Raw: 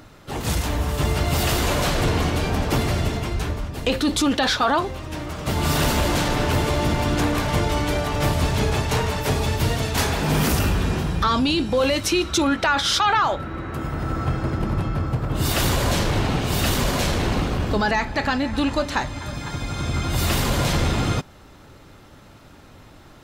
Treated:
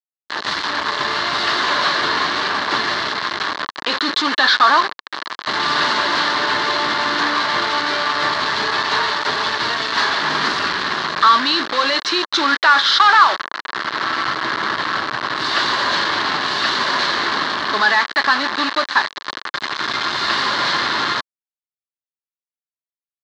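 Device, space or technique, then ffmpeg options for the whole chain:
hand-held game console: -af "acrusher=bits=3:mix=0:aa=0.000001,highpass=480,equalizer=f=500:t=q:w=4:g=-9,equalizer=f=730:t=q:w=4:g=-6,equalizer=f=1.1k:t=q:w=4:g=7,equalizer=f=1.7k:t=q:w=4:g=7,equalizer=f=2.5k:t=q:w=4:g=-7,equalizer=f=4.2k:t=q:w=4:g=7,lowpass=f=4.5k:w=0.5412,lowpass=f=4.5k:w=1.3066,volume=5dB"

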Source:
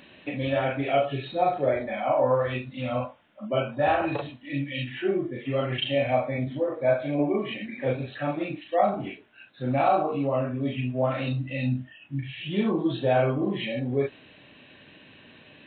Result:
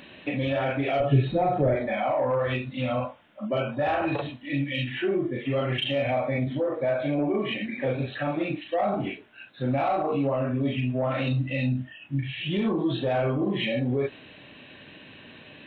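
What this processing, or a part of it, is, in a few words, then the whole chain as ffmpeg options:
soft clipper into limiter: -filter_complex "[0:a]asoftclip=type=tanh:threshold=-14dB,alimiter=limit=-22.5dB:level=0:latency=1:release=71,asettb=1/sr,asplit=3[a][b][c];[a]atrim=end=1.004[d];[b]atrim=start=1:end=1.76,asetpts=PTS-STARTPTS,afade=t=in:d=0.004:c=qsin,afade=t=out:st=0.756:d=0.004:c=qsin,aemphasis=mode=reproduction:type=riaa[e];[c]atrim=start=1.756[f];[d][e]acrossfade=d=0.004:c1=hsin:c2=qsin[g];[g][f]acrossfade=d=0.004:c1=qsin:c2=hsin,volume=4dB"

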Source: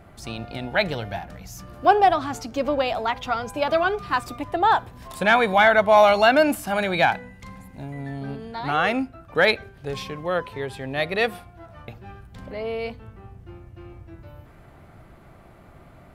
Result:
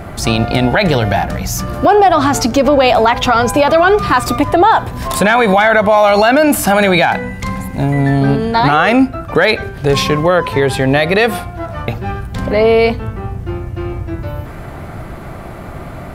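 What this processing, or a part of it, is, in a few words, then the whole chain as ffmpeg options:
mastering chain: -af "equalizer=f=3k:t=o:w=0.77:g=-2,acompressor=threshold=-27dB:ratio=1.5,asoftclip=type=hard:threshold=-12dB,alimiter=level_in=21.5dB:limit=-1dB:release=50:level=0:latency=1,volume=-1dB"

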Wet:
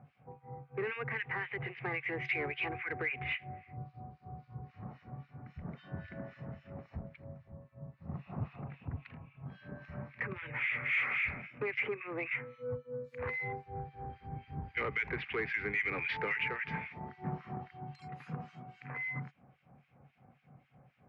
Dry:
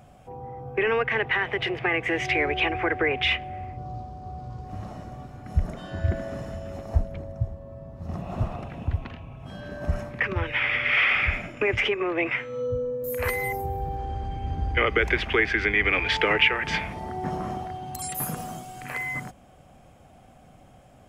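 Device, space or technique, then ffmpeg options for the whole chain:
guitar amplifier with harmonic tremolo: -filter_complex "[0:a]acrossover=split=1600[a][b];[a]aeval=exprs='val(0)*(1-1/2+1/2*cos(2*PI*3.7*n/s))':c=same[c];[b]aeval=exprs='val(0)*(1-1/2-1/2*cos(2*PI*3.7*n/s))':c=same[d];[c][d]amix=inputs=2:normalize=0,asoftclip=type=tanh:threshold=-22dB,highpass=110,equalizer=f=140:t=q:w=4:g=9,equalizer=f=330:t=q:w=4:g=-5,equalizer=f=630:t=q:w=4:g=-8,equalizer=f=2.2k:t=q:w=4:g=5,equalizer=f=3.3k:t=q:w=4:g=-8,lowpass=f=3.5k:w=0.5412,lowpass=f=3.5k:w=1.3066,volume=-5.5dB"

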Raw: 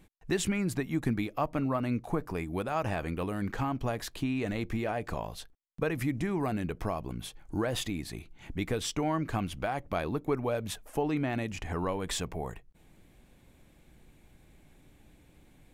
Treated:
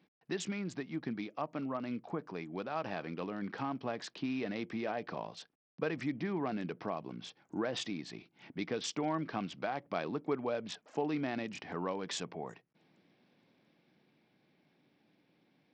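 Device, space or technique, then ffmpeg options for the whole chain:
Bluetooth headset: -af "highpass=f=160:w=0.5412,highpass=f=160:w=1.3066,dynaudnorm=f=280:g=21:m=3.5dB,aresample=16000,aresample=44100,volume=-7.5dB" -ar 44100 -c:a sbc -b:a 64k

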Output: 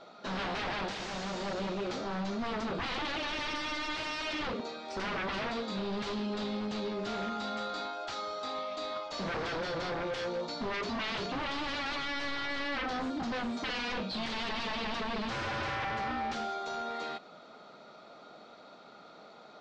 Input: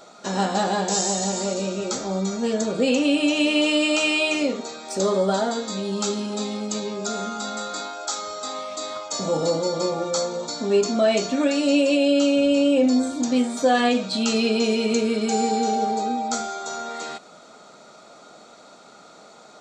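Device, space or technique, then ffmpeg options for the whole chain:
synthesiser wavefolder: -af "aeval=exprs='0.0596*(abs(mod(val(0)/0.0596+3,4)-2)-1)':c=same,lowpass=f=4.4k:w=0.5412,lowpass=f=4.4k:w=1.3066,volume=-5dB"

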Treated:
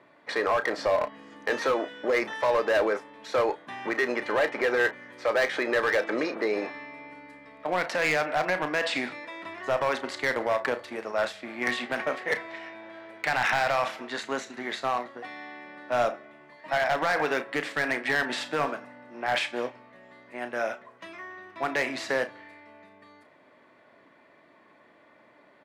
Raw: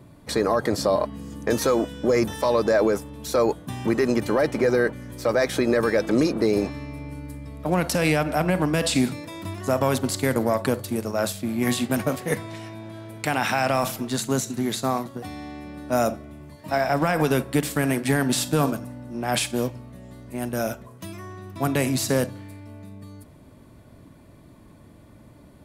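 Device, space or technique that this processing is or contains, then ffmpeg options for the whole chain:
megaphone: -filter_complex "[0:a]highpass=550,lowpass=3k,equalizer=f=1.9k:t=o:w=0.5:g=7.5,asoftclip=type=hard:threshold=-19dB,asplit=2[a][b];[b]adelay=33,volume=-12dB[c];[a][c]amix=inputs=2:normalize=0"

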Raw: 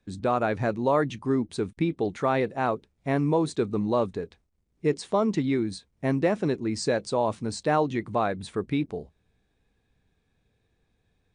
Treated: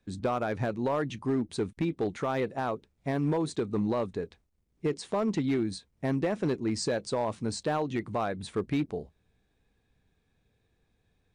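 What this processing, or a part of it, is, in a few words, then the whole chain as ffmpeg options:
limiter into clipper: -af "alimiter=limit=-17.5dB:level=0:latency=1:release=204,asoftclip=type=hard:threshold=-21dB,volume=-1dB"

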